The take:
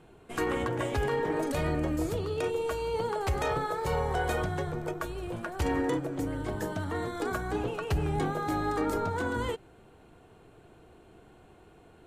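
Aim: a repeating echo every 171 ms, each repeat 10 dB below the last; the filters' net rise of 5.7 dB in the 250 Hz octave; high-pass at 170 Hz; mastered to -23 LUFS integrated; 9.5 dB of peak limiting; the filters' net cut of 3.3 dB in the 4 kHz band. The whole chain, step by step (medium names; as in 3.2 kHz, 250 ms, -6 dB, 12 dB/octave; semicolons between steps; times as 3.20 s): high-pass 170 Hz; peaking EQ 250 Hz +8.5 dB; peaking EQ 4 kHz -4.5 dB; peak limiter -24.5 dBFS; feedback delay 171 ms, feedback 32%, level -10 dB; trim +9.5 dB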